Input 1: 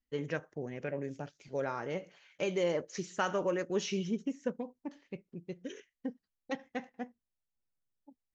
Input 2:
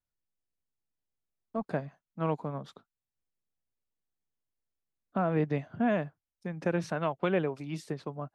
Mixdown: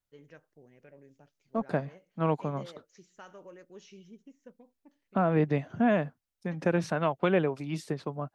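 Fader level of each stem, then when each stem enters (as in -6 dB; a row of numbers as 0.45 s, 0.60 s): -17.5 dB, +3.0 dB; 0.00 s, 0.00 s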